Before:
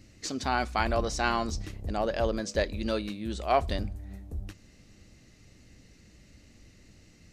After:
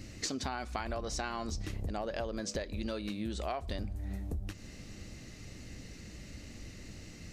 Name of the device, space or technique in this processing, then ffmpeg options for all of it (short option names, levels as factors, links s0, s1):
serial compression, leveller first: -af "acompressor=threshold=0.0282:ratio=2.5,acompressor=threshold=0.00794:ratio=6,volume=2.51"